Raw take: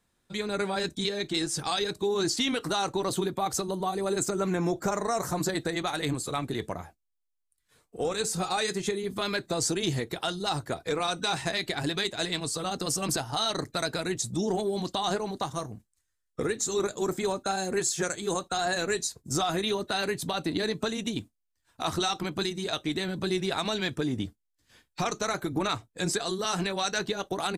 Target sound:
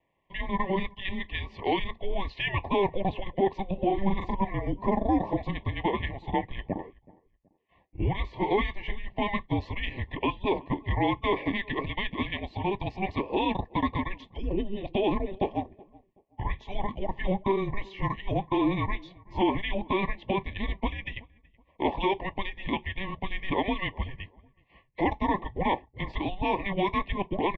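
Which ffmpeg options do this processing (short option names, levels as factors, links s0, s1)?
-filter_complex "[0:a]asettb=1/sr,asplit=3[s0][s1][s2];[s0]atrim=end=3.854[s3];[s1]atrim=start=3.85:end=4.35,asetpts=PTS-STARTPTS,afade=t=in:d=0.004:c=qsin,afade=t=out:st=0.496:d=0.004:c=qsin,asplit=2[s4][s5];[s5]adelay=41,volume=0.668[s6];[s4][s6]amix=inputs=2:normalize=0,atrim=end_sample=22050[s7];[s2]atrim=start=4.346[s8];[s3][s7]acrossfade=d=0.004:c1=hsin:c2=qsin[s9];[s9][s8]acrossfade=d=0.004:c1=qsin:c2=hsin,asettb=1/sr,asplit=3[s10][s11][s12];[s10]atrim=end=15.604[s13];[s11]atrim=start=15.6:end=16.42,asetpts=PTS-STARTPTS,afade=t=in:d=0.004:c=qsin,afade=t=out:st=0.816:d=0.004:c=qsin,equalizer=f=250:w=0.35:g=-6[s14];[s12]atrim=start=16.416[s15];[s13][s14]acrossfade=d=0.004:c1=hsin:c2=qsin[s16];[s16][s15]acrossfade=d=0.004:c1=qsin:c2=hsin,asplit=2[s17][s18];[s18]adelay=375,lowpass=f=1500:p=1,volume=0.0708,asplit=2[s19][s20];[s20]adelay=375,lowpass=f=1500:p=1,volume=0.35[s21];[s17][s19][s21]amix=inputs=3:normalize=0,highpass=f=450:t=q:w=0.5412,highpass=f=450:t=q:w=1.307,lowpass=f=2900:t=q:w=0.5176,lowpass=f=2900:t=q:w=0.7071,lowpass=f=2900:t=q:w=1.932,afreqshift=-390,asuperstop=centerf=1400:order=20:qfactor=2.4,volume=1.88"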